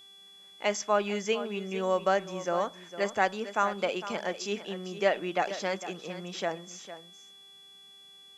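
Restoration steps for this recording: de-hum 392.9 Hz, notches 31; notch 3400 Hz, Q 30; inverse comb 0.455 s -13 dB

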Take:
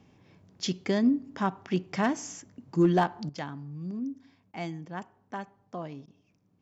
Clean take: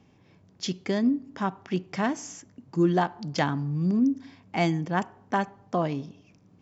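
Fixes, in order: clip repair -14.5 dBFS; interpolate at 4.52/6.06, 16 ms; gain 0 dB, from 3.29 s +11.5 dB

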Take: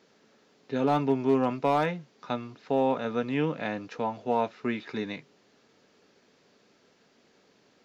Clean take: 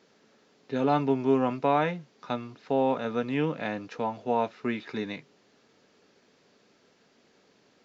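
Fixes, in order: clip repair -15.5 dBFS

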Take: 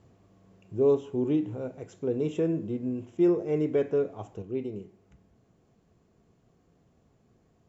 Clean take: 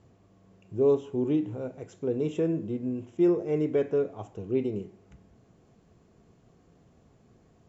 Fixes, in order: gain correction +5 dB, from 4.42

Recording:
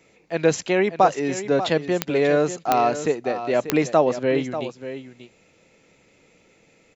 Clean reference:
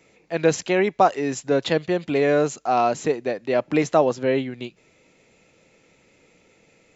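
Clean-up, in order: de-click; inverse comb 0.589 s -11.5 dB

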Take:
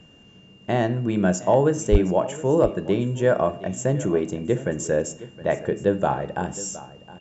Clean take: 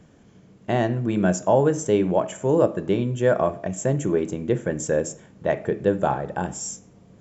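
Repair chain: clip repair -6.5 dBFS; notch 2800 Hz, Q 30; de-plosive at 1.91; inverse comb 0.716 s -17.5 dB

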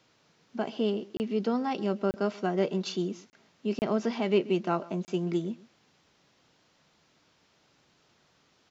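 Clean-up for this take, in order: interpolate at 1.17/2.11/3.3/3.79/5.05, 29 ms; inverse comb 0.131 s -21 dB

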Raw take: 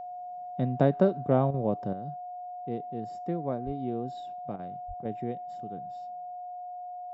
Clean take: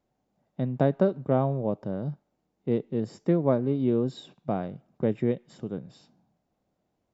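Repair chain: notch 720 Hz, Q 30; de-plosive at 3.65/4.87; interpolate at 1.51/4.56/5.02, 29 ms; gain 0 dB, from 1.93 s +9 dB

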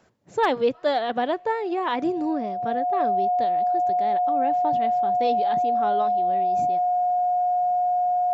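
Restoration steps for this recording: clip repair -11.5 dBFS; notch 720 Hz, Q 30

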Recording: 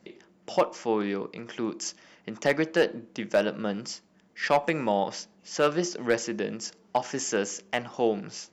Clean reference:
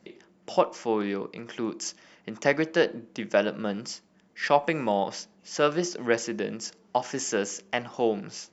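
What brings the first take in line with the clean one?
clip repair -13.5 dBFS

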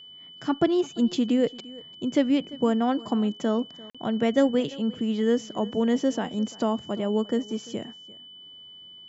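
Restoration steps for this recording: notch 3000 Hz, Q 30; interpolate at 3.9, 46 ms; inverse comb 0.344 s -21 dB

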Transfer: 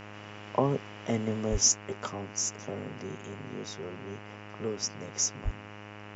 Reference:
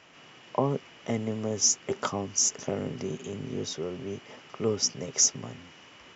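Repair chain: de-hum 103.9 Hz, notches 28; de-plosive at 1.51/5.44; gain 0 dB, from 1.72 s +6.5 dB

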